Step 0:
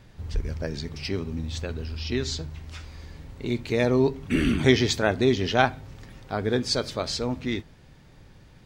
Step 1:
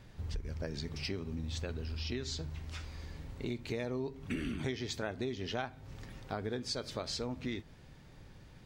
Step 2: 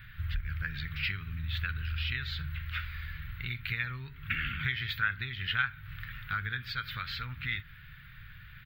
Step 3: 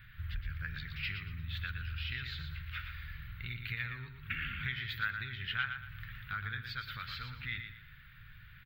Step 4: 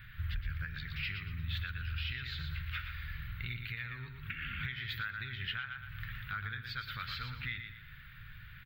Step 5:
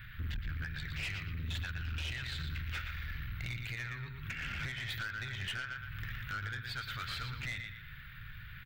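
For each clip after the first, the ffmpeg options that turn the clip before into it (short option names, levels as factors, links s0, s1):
-af "acompressor=threshold=0.0282:ratio=6,volume=0.668"
-af "firequalizer=gain_entry='entry(130,0);entry(260,-23);entry(650,-29);entry(1400,11);entry(3700,2);entry(5900,-26);entry(10000,-27);entry(14000,12)':delay=0.05:min_phase=1,volume=1.78"
-af "aecho=1:1:117|234|351|468:0.422|0.127|0.038|0.0114,volume=0.531"
-af "alimiter=level_in=2.24:limit=0.0631:level=0:latency=1:release=428,volume=0.447,volume=1.5"
-af "aeval=exprs='(tanh(70.8*val(0)+0.25)-tanh(0.25))/70.8':c=same,volume=1.5"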